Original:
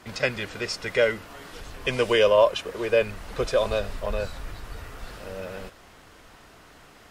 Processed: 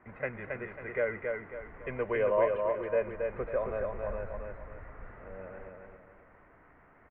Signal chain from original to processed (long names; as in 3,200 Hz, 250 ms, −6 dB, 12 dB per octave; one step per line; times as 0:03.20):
elliptic low-pass filter 2,100 Hz, stop band 60 dB
repeating echo 273 ms, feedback 36%, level −4 dB
level −9 dB